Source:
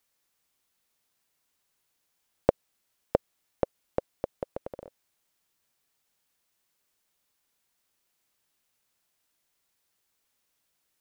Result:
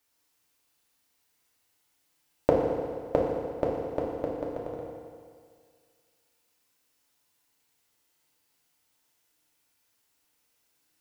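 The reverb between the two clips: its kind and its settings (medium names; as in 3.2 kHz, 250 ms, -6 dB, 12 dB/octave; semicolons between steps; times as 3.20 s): FDN reverb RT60 2 s, low-frequency decay 0.9×, high-frequency decay 0.95×, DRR -4 dB; trim -1.5 dB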